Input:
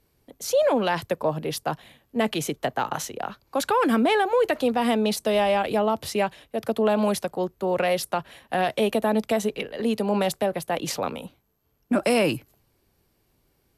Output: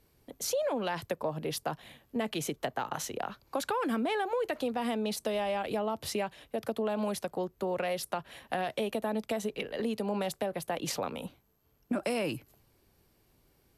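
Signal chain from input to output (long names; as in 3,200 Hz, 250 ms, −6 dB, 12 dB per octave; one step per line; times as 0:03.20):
downward compressor 3 to 1, threshold −32 dBFS, peak gain reduction 11 dB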